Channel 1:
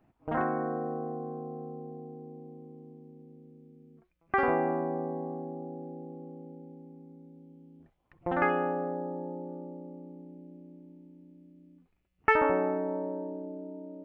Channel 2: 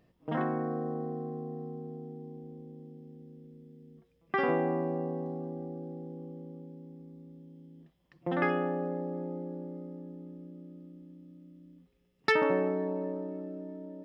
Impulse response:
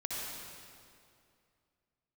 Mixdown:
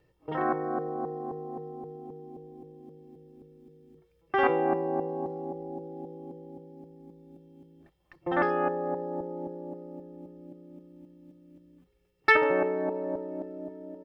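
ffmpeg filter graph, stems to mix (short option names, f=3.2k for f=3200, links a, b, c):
-filter_complex "[0:a]tiltshelf=f=650:g=-4,dynaudnorm=f=220:g=3:m=11dB,aeval=exprs='val(0)*pow(10,-24*if(lt(mod(-3.8*n/s,1),2*abs(-3.8)/1000),1-mod(-3.8*n/s,1)/(2*abs(-3.8)/1000),(mod(-3.8*n/s,1)-2*abs(-3.8)/1000)/(1-2*abs(-3.8)/1000))/20)':c=same,volume=-4.5dB[a];[1:a]aecho=1:1:2.2:0.93,volume=-1,adelay=1.2,volume=-2dB[b];[a][b]amix=inputs=2:normalize=0"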